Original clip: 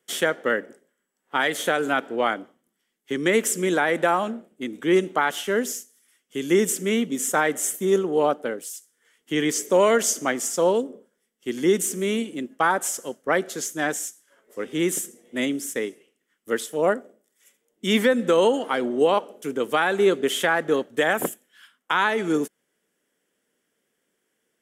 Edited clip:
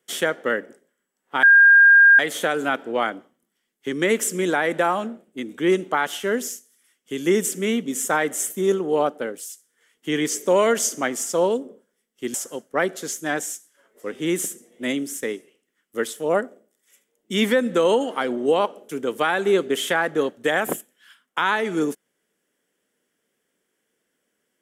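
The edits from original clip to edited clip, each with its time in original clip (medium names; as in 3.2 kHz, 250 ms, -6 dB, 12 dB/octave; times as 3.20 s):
1.43 s: add tone 1.61 kHz -8 dBFS 0.76 s
11.58–12.87 s: delete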